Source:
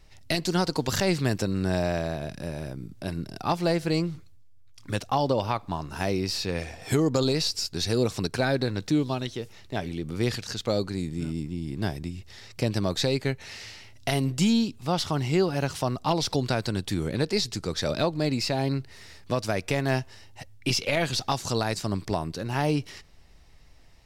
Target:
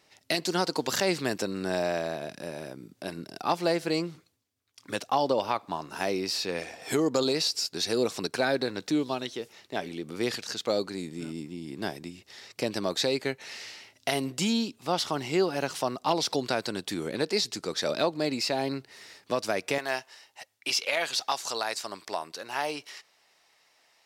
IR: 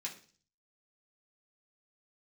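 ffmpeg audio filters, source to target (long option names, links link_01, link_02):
-af "asetnsamples=nb_out_samples=441:pad=0,asendcmd='19.78 highpass f 650',highpass=280"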